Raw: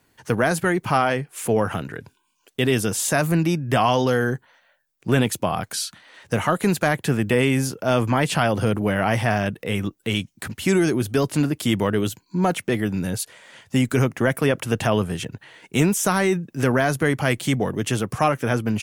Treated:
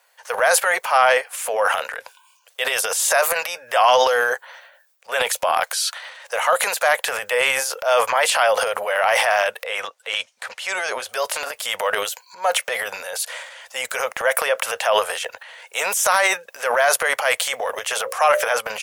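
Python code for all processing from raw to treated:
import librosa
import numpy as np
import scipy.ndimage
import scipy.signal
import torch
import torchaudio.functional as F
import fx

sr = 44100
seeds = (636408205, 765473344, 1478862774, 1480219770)

y = fx.chain(x, sr, fx.highpass(hz=120.0, slope=6),
    fx.air_absorb(metres=54.0), at=(9.66, 11.09))
y = fx.chain(y, sr, fx.hum_notches(base_hz=60, count=10),
    fx.band_squash(depth_pct=40), at=(17.91, 18.52))
y = scipy.signal.sosfilt(scipy.signal.ellip(4, 1.0, 40, 520.0, 'highpass', fs=sr, output='sos'), y)
y = fx.transient(y, sr, attack_db=-3, sustain_db=10)
y = y * librosa.db_to_amplitude(5.5)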